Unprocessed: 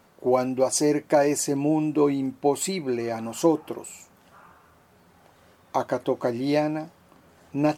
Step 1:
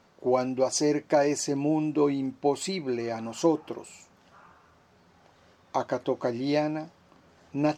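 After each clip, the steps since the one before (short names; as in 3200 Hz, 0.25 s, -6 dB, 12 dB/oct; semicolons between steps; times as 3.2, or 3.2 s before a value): resonant high shelf 7900 Hz -11.5 dB, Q 1.5; gain -3 dB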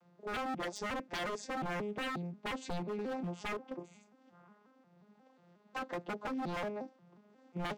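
arpeggiated vocoder minor triad, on F3, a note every 0.179 s; wavefolder -29.5 dBFS; gain -3 dB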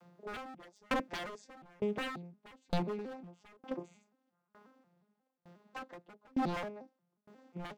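dB-ramp tremolo decaying 1.1 Hz, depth 35 dB; gain +8 dB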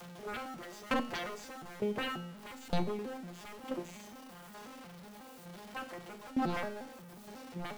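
zero-crossing step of -45 dBFS; resonator 120 Hz, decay 0.66 s, harmonics all, mix 70%; gain +9 dB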